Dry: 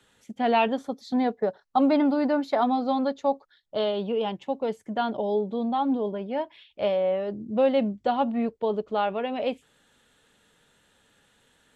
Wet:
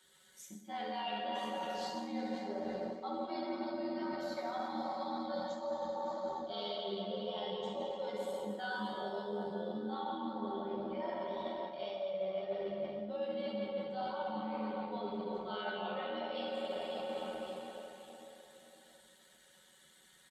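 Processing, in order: spectral noise reduction 7 dB; feedback delay 321 ms, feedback 38%, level -14.5 dB; speed mistake 24 fps film run at 25 fps; hum notches 50/100/150/200/250/300/350/400/450 Hz; on a send: frequency-shifting echo 173 ms, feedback 33%, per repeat -83 Hz, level -20.5 dB; on the sum: plate-style reverb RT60 1.9 s, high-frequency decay 0.7×, DRR -3.5 dB; granular stretch 1.8×, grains 24 ms; treble shelf 2.5 kHz +11 dB; reverse; compression 10:1, threshold -34 dBFS, peak gain reduction 21.5 dB; reverse; high-pass 51 Hz; band-stop 2.6 kHz, Q 8.2; flange 1.9 Hz, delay 2 ms, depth 6.8 ms, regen -63%; trim +2 dB

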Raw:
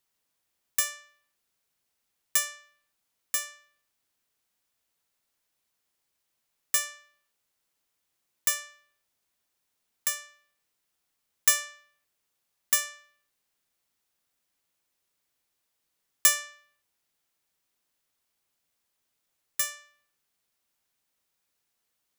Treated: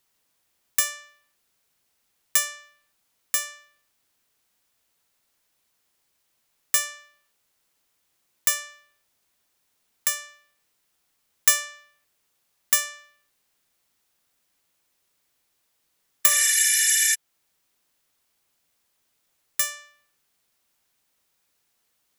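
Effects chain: spectral replace 16.28–17.12 s, 1.4–12 kHz before; in parallel at -3 dB: compression, threshold -34 dBFS, peak gain reduction 17 dB; on the sum: trim +2.5 dB

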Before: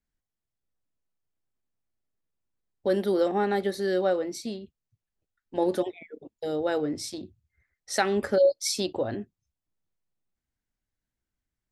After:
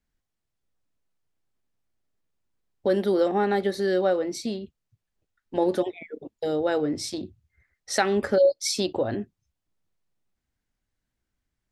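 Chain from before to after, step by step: treble shelf 10 kHz -9 dB; in parallel at -1 dB: compression, threshold -32 dBFS, peak gain reduction 14.5 dB

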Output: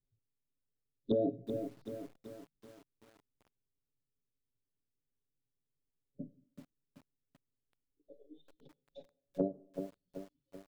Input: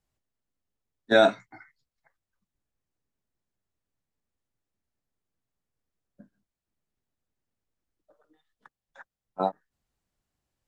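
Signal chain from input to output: distance through air 340 m; comb 7.3 ms, depth 85%; wow and flutter 29 cents; elliptic band-stop 500–3500 Hz, stop band 50 dB; low-pass that closes with the level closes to 570 Hz, closed at -34 dBFS; peak limiter -21 dBFS, peak gain reduction 6.5 dB; compression 4:1, threshold -40 dBFS, peak gain reduction 12.5 dB; spectral noise reduction 17 dB; on a send at -21 dB: reverberation RT60 0.60 s, pre-delay 48 ms; on the sum: bit-crushed delay 382 ms, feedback 55%, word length 11-bit, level -7.5 dB; trim +10 dB

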